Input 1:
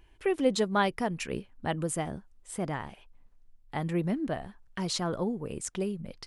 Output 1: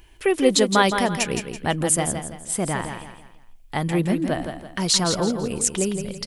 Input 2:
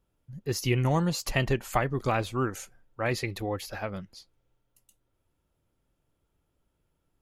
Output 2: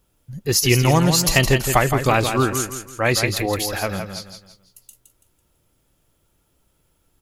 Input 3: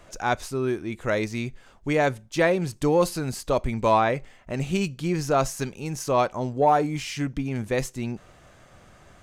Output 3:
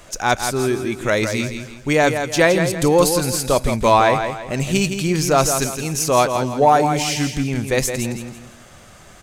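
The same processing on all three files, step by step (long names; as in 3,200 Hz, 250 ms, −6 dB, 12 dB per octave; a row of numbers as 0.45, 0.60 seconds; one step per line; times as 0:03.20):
high-shelf EQ 3,600 Hz +10 dB
on a send: repeating echo 166 ms, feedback 36%, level −7.5 dB
on the sum: normalise the peak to −2 dBFS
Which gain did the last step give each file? +7.0, +8.5, +5.5 decibels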